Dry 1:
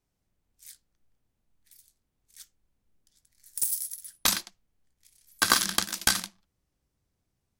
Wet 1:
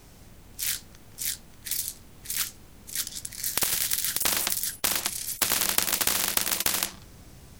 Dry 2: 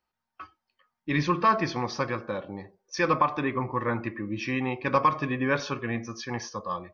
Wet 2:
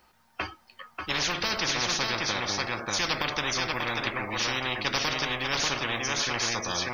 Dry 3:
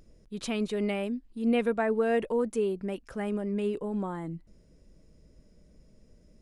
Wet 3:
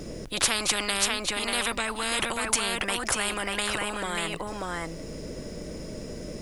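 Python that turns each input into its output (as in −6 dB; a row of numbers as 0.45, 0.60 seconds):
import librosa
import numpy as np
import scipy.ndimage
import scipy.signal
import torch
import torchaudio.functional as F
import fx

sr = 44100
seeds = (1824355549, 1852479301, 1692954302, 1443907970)

p1 = x + fx.echo_single(x, sr, ms=589, db=-8.0, dry=0)
p2 = fx.spectral_comp(p1, sr, ratio=10.0)
y = p2 * 10.0 ** (-30 / 20.0) / np.sqrt(np.mean(np.square(p2)))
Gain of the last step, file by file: 0.0, −1.5, +7.5 decibels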